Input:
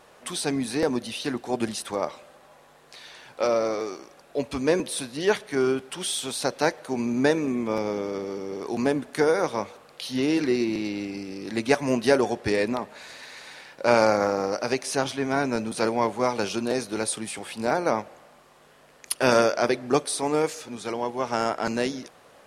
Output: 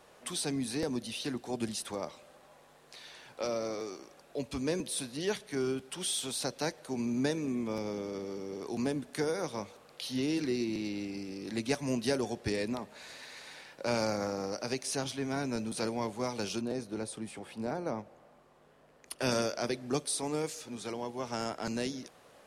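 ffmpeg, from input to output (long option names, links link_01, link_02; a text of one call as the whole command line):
ffmpeg -i in.wav -filter_complex "[0:a]asettb=1/sr,asplit=3[link_01][link_02][link_03];[link_01]atrim=end=16.614[link_04];[link_02]atrim=start=16.61:end=19.19,asetpts=PTS-STARTPTS,afade=type=in:duration=0.004:curve=qsin,afade=type=out:start_time=2.576:duration=0.004:curve=qsin,highshelf=frequency=2000:gain=-11.5[link_05];[link_03]atrim=start=19.186[link_06];[link_04][link_05]acrossfade=duration=0.004:curve1=hsin:curve2=qsin[link_07];[link_07][link_06]acrossfade=duration=0.004:curve1=qsin:curve2=hsin,equalizer=frequency=1300:width=0.61:gain=-2.5,acrossover=split=240|3000[link_08][link_09][link_10];[link_09]acompressor=threshold=-40dB:ratio=1.5[link_11];[link_08][link_11][link_10]amix=inputs=3:normalize=0,volume=-4dB" out.wav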